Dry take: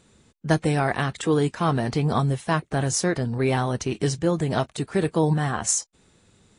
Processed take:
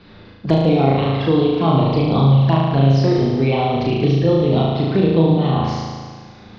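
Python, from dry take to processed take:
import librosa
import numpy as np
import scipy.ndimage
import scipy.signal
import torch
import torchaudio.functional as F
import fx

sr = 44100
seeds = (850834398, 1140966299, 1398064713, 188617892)

p1 = fx.spec_quant(x, sr, step_db=15)
p2 = scipy.signal.sosfilt(scipy.signal.butter(12, 5000.0, 'lowpass', fs=sr, output='sos'), p1)
p3 = fx.env_flanger(p2, sr, rest_ms=10.9, full_db=-23.0)
p4 = p3 + fx.room_flutter(p3, sr, wall_m=6.3, rt60_s=1.3, dry=0)
p5 = fx.band_squash(p4, sr, depth_pct=40)
y = p5 * 10.0 ** (4.5 / 20.0)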